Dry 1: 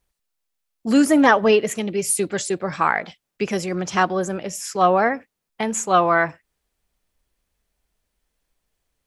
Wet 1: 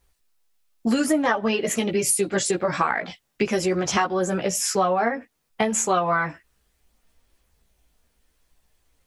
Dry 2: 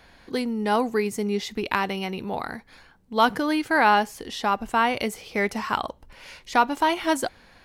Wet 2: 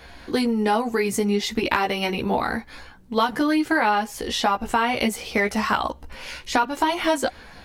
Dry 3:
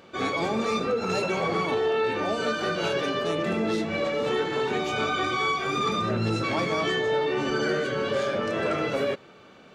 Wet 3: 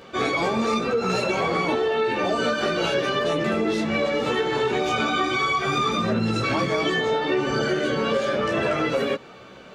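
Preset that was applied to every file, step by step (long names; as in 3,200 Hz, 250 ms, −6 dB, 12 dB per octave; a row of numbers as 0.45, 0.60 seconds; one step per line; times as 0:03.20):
multi-voice chorus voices 4, 0.51 Hz, delay 15 ms, depth 2.2 ms
downward compressor 6 to 1, threshold −29 dBFS
loudness normalisation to −23 LKFS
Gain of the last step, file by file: +10.0, +11.5, +9.5 decibels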